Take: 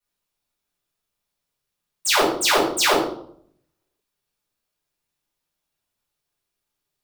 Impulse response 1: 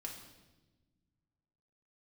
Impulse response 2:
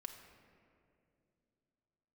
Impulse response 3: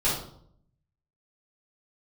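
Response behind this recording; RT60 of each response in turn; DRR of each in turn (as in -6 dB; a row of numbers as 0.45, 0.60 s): 3; 1.2, 2.6, 0.65 s; -1.0, 4.0, -11.0 dB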